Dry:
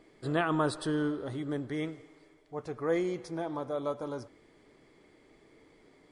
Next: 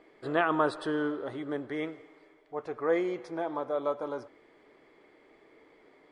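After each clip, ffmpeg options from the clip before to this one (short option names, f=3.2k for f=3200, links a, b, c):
-af "bass=f=250:g=-14,treble=f=4k:g=-14,volume=4dB"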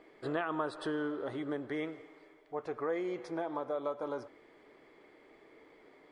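-af "acompressor=threshold=-33dB:ratio=3"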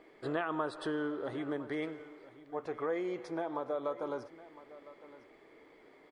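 -af "aecho=1:1:1008:0.133"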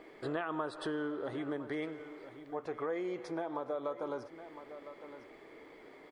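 -af "acompressor=threshold=-50dB:ratio=1.5,volume=5dB"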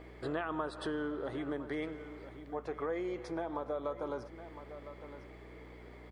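-af "aeval=exprs='val(0)+0.00224*(sin(2*PI*60*n/s)+sin(2*PI*2*60*n/s)/2+sin(2*PI*3*60*n/s)/3+sin(2*PI*4*60*n/s)/4+sin(2*PI*5*60*n/s)/5)':c=same"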